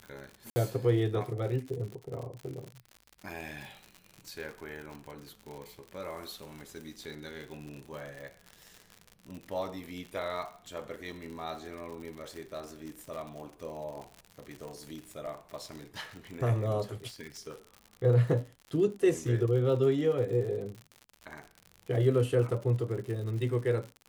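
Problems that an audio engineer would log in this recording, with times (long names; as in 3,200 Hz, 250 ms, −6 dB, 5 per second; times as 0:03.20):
surface crackle 86 per second −38 dBFS
0:00.50–0:00.56: drop-out 60 ms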